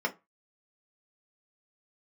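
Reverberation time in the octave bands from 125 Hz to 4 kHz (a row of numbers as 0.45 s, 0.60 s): 0.30 s, 0.20 s, 0.25 s, 0.25 s, 0.20 s, 0.15 s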